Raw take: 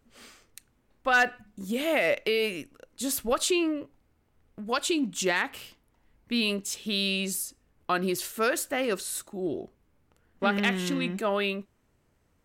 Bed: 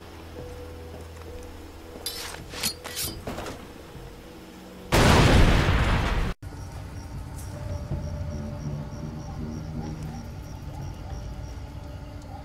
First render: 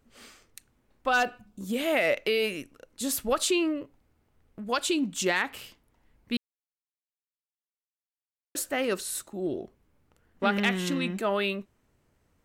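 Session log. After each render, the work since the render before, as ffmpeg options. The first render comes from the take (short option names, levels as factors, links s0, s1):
-filter_complex "[0:a]asettb=1/sr,asplit=3[s0][s1][s2];[s0]atrim=end=1.084[s3];[s1]atrim=start=1.08:end=1.67,asetpts=PTS-STARTPTS,afade=t=in:d=0.004:c=qsin,afade=t=out:st=0.586:d=0.004:c=qsin,equalizer=f=1900:w=4.1:g=-13.5[s4];[s2]atrim=start=1.666[s5];[s3][s4]acrossfade=d=0.004:c1=hsin:c2=qsin[s6];[s6][s5]acrossfade=d=0.004:c1=qsin:c2=hsin,asplit=3[s7][s8][s9];[s7]atrim=end=6.37,asetpts=PTS-STARTPTS,afade=t=out:st=6.366:d=0.004:c=hsin[s10];[s8]atrim=start=6.37:end=8.55,asetpts=PTS-STARTPTS,volume=0[s11];[s9]atrim=start=8.55,asetpts=PTS-STARTPTS,afade=t=in:d=0.004:c=hsin[s12];[s10][s11][s12]concat=n=3:v=0:a=1"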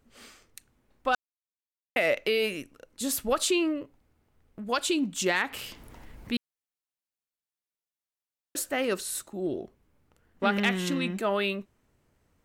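-filter_complex "[0:a]asettb=1/sr,asplit=3[s0][s1][s2];[s0]atrim=end=5.354[s3];[s1]atrim=start=5.35:end=6.36,asetpts=PTS-STARTPTS,afade=t=in:d=0.004:c=qsin,afade=t=out:st=1.006:d=0.004:c=qsin,acompressor=mode=upward:threshold=0.0316:ratio=2.5:attack=3.2:release=140:knee=2.83:detection=peak[s4];[s2]atrim=start=6.356[s5];[s3][s4]acrossfade=d=0.004:c1=hsin:c2=qsin[s6];[s6][s5]acrossfade=d=0.004:c1=qsin:c2=hsin,asplit=3[s7][s8][s9];[s7]atrim=end=1.15,asetpts=PTS-STARTPTS,afade=t=out:st=1.146:d=0.004:c=hsin[s10];[s8]atrim=start=1.15:end=1.96,asetpts=PTS-STARTPTS,volume=0[s11];[s9]atrim=start=1.96,asetpts=PTS-STARTPTS,afade=t=in:d=0.004:c=hsin[s12];[s10][s11][s12]concat=n=3:v=0:a=1"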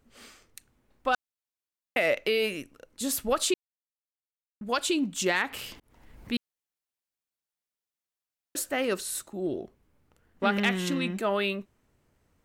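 -filter_complex "[0:a]asplit=4[s0][s1][s2][s3];[s0]atrim=end=3.54,asetpts=PTS-STARTPTS,afade=t=out:st=3.536:d=0.004:c=hsin[s4];[s1]atrim=start=3.54:end=4.61,asetpts=PTS-STARTPTS,volume=0[s5];[s2]atrim=start=4.61:end=5.8,asetpts=PTS-STARTPTS,afade=t=in:d=0.004:c=hsin,afade=t=out:st=1.186:d=0.004:c=hsin[s6];[s3]atrim=start=5.8,asetpts=PTS-STARTPTS,afade=t=in:d=0.55[s7];[s4][s5][s6][s7]concat=n=4:v=0:a=1"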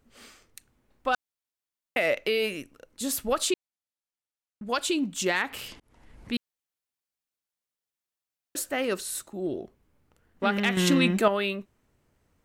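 -filter_complex "[0:a]asettb=1/sr,asplit=3[s0][s1][s2];[s0]atrim=end=3.504[s3];[s1]atrim=start=3.5:end=4.7,asetpts=PTS-STARTPTS,afade=t=in:d=0.004:c=qsin,afade=t=out:st=1.196:d=0.004:c=qsin,lowpass=11000[s4];[s2]atrim=start=4.696[s5];[s3][s4]acrossfade=d=0.004:c1=hsin:c2=qsin[s6];[s6][s5]acrossfade=d=0.004:c1=qsin:c2=hsin,asettb=1/sr,asplit=3[s7][s8][s9];[s7]atrim=end=5.684[s10];[s8]atrim=start=5.68:end=6.33,asetpts=PTS-STARTPTS,afade=t=in:d=0.004:c=qsin,afade=t=out:st=0.646:d=0.004:c=qsin,lowpass=f=11000:w=0.5412,lowpass=f=11000:w=1.3066[s11];[s9]atrim=start=6.326[s12];[s10][s11]acrossfade=d=0.004:c1=hsin:c2=qsin[s13];[s13][s12]acrossfade=d=0.004:c1=qsin:c2=hsin,asplit=3[s14][s15][s16];[s14]atrim=end=10.772[s17];[s15]atrim=start=10.768:end=11.282,asetpts=PTS-STARTPTS,volume=2.37[s18];[s16]atrim=start=11.278[s19];[s17][s18]acrossfade=d=0.004:c1=hsin:c2=hsin[s20];[s20][s19]acrossfade=d=0.004:c1=hsin:c2=hsin"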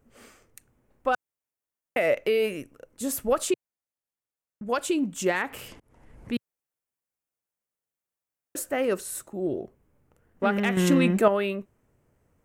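-af "equalizer=f=125:t=o:w=1:g=4,equalizer=f=500:t=o:w=1:g=4,equalizer=f=4000:t=o:w=1:g=-9"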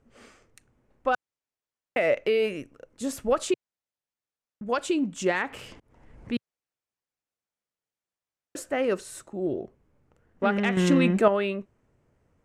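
-af "lowpass=6700"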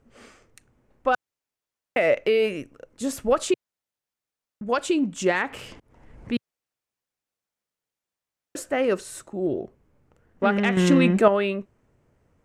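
-af "volume=1.41"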